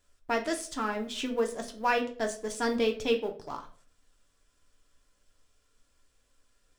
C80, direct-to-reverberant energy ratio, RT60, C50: 17.5 dB, 3.0 dB, 0.50 s, 12.5 dB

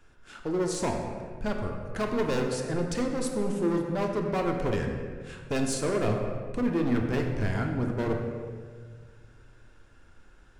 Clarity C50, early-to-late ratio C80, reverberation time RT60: 4.0 dB, 5.0 dB, 1.7 s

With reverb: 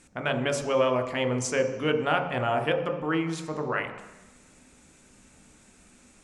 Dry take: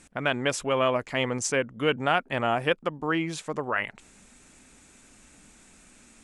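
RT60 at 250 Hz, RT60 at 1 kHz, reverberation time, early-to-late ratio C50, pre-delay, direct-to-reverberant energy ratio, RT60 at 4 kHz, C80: 1.0 s, 1.2 s, 1.1 s, 7.5 dB, 14 ms, 4.0 dB, 1.3 s, 10.0 dB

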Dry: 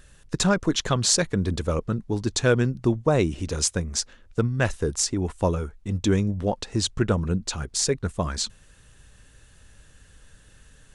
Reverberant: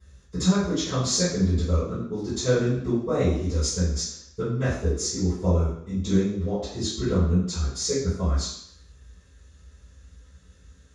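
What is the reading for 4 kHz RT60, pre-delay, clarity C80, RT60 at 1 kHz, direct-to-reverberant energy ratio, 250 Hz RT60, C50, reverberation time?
0.70 s, 3 ms, 5.5 dB, 0.70 s, −19.0 dB, 0.70 s, 1.0 dB, 0.70 s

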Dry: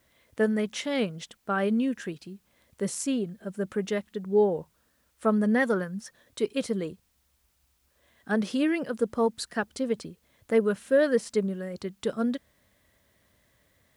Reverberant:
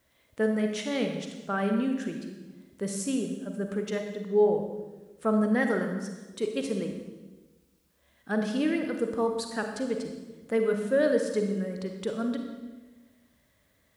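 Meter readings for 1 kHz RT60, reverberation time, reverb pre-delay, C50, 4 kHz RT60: 1.1 s, 1.2 s, 35 ms, 5.0 dB, 1.1 s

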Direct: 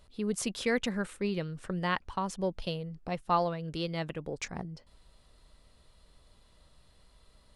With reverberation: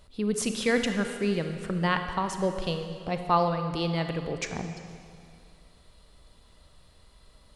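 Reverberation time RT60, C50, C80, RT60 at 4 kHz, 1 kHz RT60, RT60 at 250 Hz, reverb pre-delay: 2.3 s, 7.0 dB, 8.0 dB, 2.1 s, 2.3 s, 2.4 s, 31 ms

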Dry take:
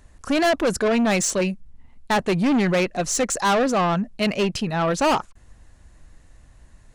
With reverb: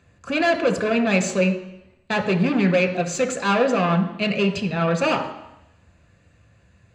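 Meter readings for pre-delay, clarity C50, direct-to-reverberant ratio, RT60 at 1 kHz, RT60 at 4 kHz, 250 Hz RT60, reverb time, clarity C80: 3 ms, 10.0 dB, 5.0 dB, 0.85 s, 0.90 s, 0.85 s, 0.85 s, 12.0 dB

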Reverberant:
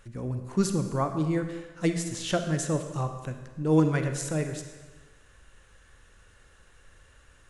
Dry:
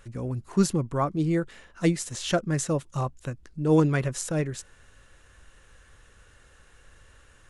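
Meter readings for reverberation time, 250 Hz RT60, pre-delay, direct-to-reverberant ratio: 1.3 s, 1.2 s, 36 ms, 7.0 dB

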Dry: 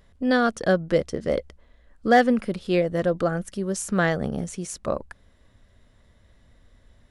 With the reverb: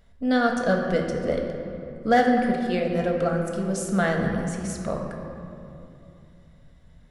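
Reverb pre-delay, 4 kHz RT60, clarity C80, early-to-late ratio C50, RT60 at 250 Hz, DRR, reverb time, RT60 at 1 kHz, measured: 4 ms, 1.5 s, 4.5 dB, 3.5 dB, 3.6 s, 1.0 dB, 2.7 s, 2.6 s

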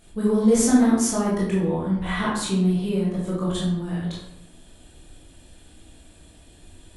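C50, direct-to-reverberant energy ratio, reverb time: 1.5 dB, −7.0 dB, 0.80 s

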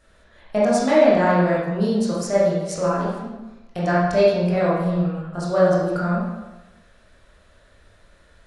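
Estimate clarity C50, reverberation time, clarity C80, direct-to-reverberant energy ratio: −1.0 dB, 1.1 s, 2.5 dB, −8.0 dB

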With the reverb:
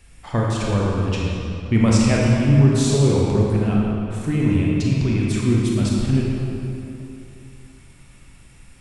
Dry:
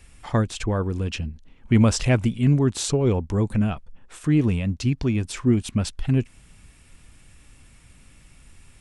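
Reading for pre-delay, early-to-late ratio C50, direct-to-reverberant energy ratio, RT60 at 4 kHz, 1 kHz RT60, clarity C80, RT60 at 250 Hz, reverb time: 23 ms, −2.0 dB, −4.0 dB, 1.9 s, 3.0 s, −0.5 dB, 2.9 s, 3.0 s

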